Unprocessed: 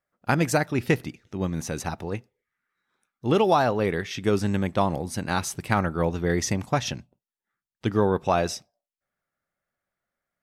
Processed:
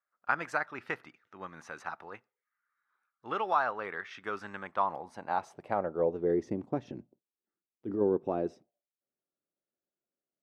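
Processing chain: 6.87–8.01 transient shaper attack -10 dB, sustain +5 dB; band-pass sweep 1300 Hz -> 340 Hz, 4.62–6.53

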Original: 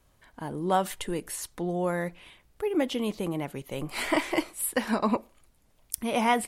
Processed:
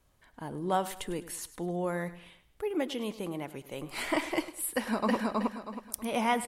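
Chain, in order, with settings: 2.7–3.9 low shelf 140 Hz -8.5 dB; 4.72–5.15 echo throw 0.32 s, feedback 30%, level -1 dB; feedback echo 0.103 s, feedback 38%, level -15.5 dB; gain -4 dB

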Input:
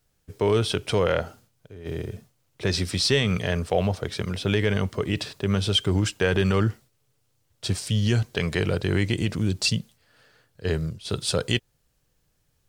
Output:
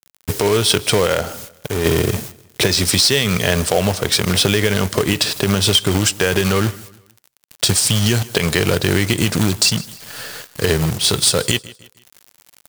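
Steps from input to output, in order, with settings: high shelf 4900 Hz +11 dB; companded quantiser 4-bit; compressor 10:1, threshold -33 dBFS, peak gain reduction 19 dB; low shelf 120 Hz -6 dB; on a send: feedback echo 0.155 s, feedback 39%, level -22 dB; on the sum: maximiser +23.5 dB; gain -1 dB

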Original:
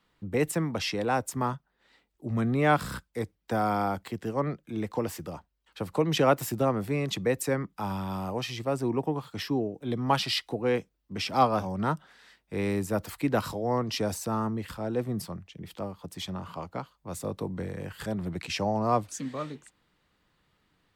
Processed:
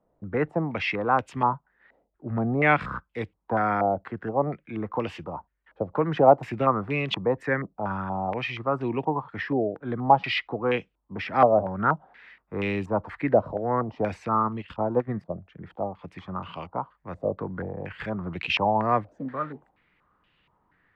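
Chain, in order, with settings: 14.34–15.32 transient shaper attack +7 dB, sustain -12 dB; stepped low-pass 4.2 Hz 630–2800 Hz

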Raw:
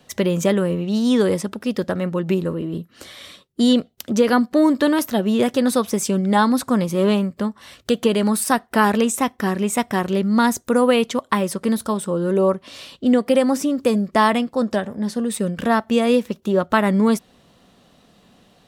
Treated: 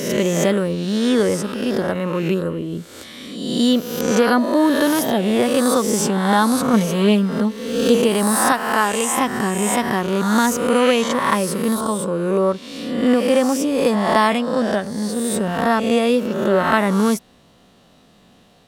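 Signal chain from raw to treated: spectral swells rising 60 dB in 1.08 s; 6.73–7.97 comb 4.4 ms, depth 71%; 8.52–9.17 bell 150 Hz -9 dB 2.6 oct; gain -1 dB

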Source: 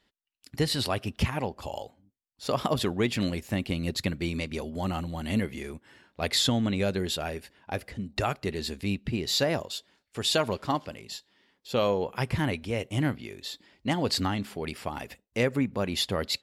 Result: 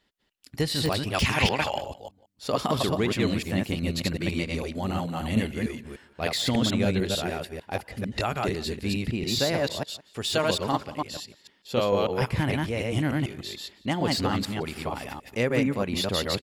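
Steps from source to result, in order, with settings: reverse delay 0.149 s, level -1 dB; 1.13–1.77 bell 7100 Hz -> 1900 Hz +14 dB 3 oct; de-esser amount 55%; outdoor echo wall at 30 m, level -20 dB

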